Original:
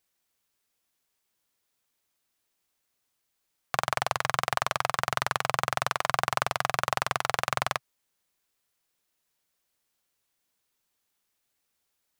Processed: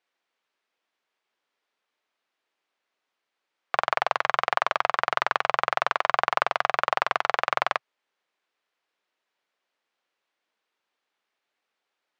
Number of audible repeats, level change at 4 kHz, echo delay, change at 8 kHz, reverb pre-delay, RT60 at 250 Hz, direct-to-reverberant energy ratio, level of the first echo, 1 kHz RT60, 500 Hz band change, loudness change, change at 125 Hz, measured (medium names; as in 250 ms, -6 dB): no echo, -0.5 dB, no echo, under -10 dB, no reverb, no reverb, no reverb, no echo, no reverb, +4.0 dB, +3.5 dB, -13.0 dB